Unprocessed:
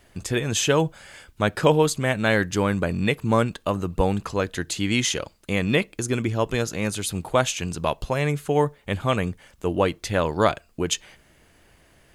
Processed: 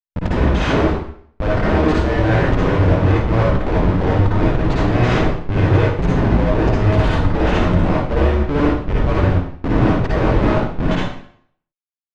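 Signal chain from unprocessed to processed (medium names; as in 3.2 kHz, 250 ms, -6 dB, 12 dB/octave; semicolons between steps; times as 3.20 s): cycle switcher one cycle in 2, inverted; Schmitt trigger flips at -27 dBFS; tape spacing loss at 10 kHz 38 dB; reverberation RT60 0.60 s, pre-delay 50 ms, DRR -5.5 dB; trim +6.5 dB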